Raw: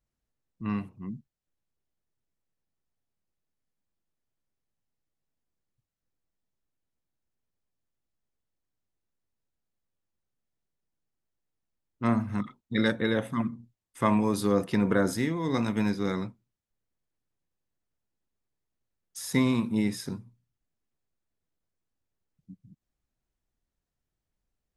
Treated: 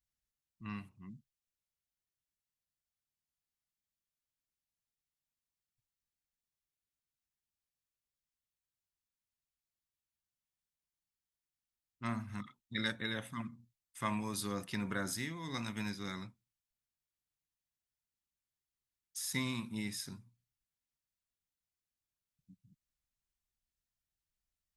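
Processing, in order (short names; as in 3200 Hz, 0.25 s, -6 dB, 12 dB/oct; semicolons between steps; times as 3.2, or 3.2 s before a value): passive tone stack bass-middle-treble 5-5-5; notch 470 Hz, Q 12; gain +4 dB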